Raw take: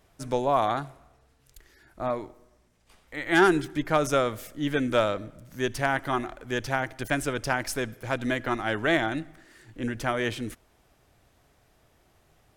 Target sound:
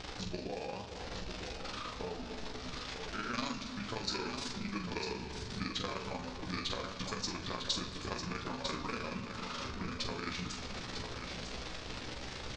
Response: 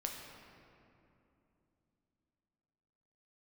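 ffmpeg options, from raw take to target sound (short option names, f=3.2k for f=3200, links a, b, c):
-filter_complex "[0:a]aeval=exprs='val(0)+0.5*0.0158*sgn(val(0))':c=same,tremolo=f=26:d=1,lowpass=f=7k:w=0.5412,lowpass=f=7k:w=1.3066,acrossover=split=4500[a][b];[a]acompressor=threshold=-38dB:ratio=8[c];[c][b]amix=inputs=2:normalize=0,asetrate=31183,aresample=44100,atempo=1.41421,aemphasis=mode=production:type=75kf,asplit=2[d][e];[e]adelay=16,volume=-6dB[f];[d][f]amix=inputs=2:normalize=0,aecho=1:1:950:0.447,asplit=2[g][h];[1:a]atrim=start_sample=2205,adelay=44[i];[h][i]afir=irnorm=-1:irlink=0,volume=-5dB[j];[g][j]amix=inputs=2:normalize=0,volume=-1.5dB"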